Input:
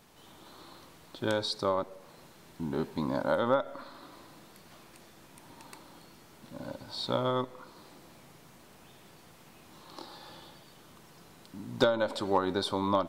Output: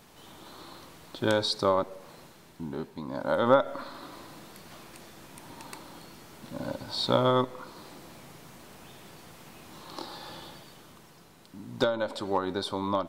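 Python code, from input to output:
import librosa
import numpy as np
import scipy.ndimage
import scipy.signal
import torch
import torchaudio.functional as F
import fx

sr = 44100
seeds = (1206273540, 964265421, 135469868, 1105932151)

y = fx.gain(x, sr, db=fx.line((2.13, 4.5), (3.04, -6.5), (3.52, 6.0), (10.54, 6.0), (11.31, -1.0)))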